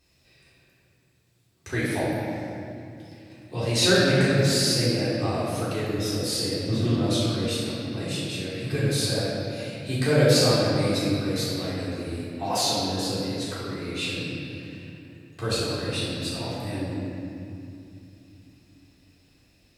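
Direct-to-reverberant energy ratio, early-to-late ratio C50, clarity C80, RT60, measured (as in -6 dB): -11.0 dB, -2.5 dB, -1.0 dB, 2.7 s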